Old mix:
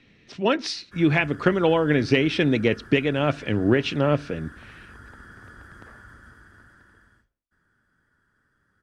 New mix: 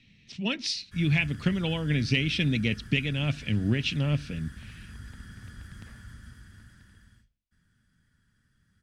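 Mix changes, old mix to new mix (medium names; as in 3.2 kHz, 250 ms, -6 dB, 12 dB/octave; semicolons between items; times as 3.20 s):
background +5.5 dB; master: add high-order bell 710 Hz -15.5 dB 2.8 oct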